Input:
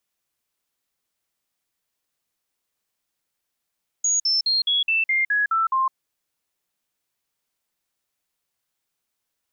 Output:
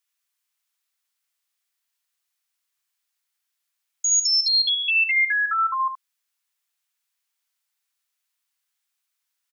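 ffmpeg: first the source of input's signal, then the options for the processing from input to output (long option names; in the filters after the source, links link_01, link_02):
-f lavfi -i "aevalsrc='0.133*clip(min(mod(t,0.21),0.16-mod(t,0.21))/0.005,0,1)*sin(2*PI*6700*pow(2,-floor(t/0.21)/3)*mod(t,0.21))':duration=1.89:sample_rate=44100"
-filter_complex "[0:a]highpass=1200,asplit=2[link_01][link_02];[link_02]aecho=0:1:73:0.447[link_03];[link_01][link_03]amix=inputs=2:normalize=0"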